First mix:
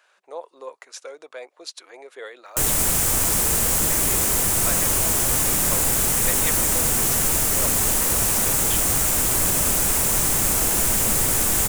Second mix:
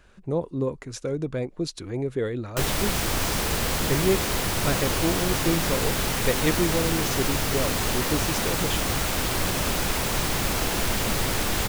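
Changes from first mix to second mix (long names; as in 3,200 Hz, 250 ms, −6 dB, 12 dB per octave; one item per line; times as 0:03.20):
speech: remove high-pass filter 610 Hz 24 dB per octave
background: add high shelf with overshoot 5,900 Hz −10.5 dB, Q 1.5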